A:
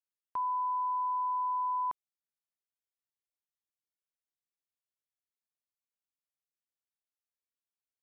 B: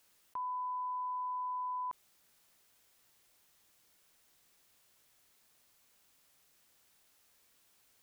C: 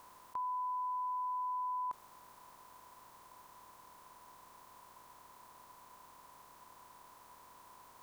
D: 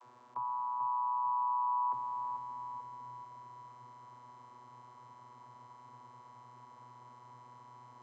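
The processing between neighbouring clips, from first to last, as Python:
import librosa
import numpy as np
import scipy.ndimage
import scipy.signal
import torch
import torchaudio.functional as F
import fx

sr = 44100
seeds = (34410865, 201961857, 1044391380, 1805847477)

y1 = fx.env_flatten(x, sr, amount_pct=50)
y1 = y1 * librosa.db_to_amplitude(-6.0)
y2 = fx.bin_compress(y1, sr, power=0.4)
y3 = fx.vocoder(y2, sr, bands=32, carrier='saw', carrier_hz=123.0)
y3 = fx.echo_feedback(y3, sr, ms=440, feedback_pct=51, wet_db=-7)
y3 = y3 * librosa.db_to_amplitude(1.5)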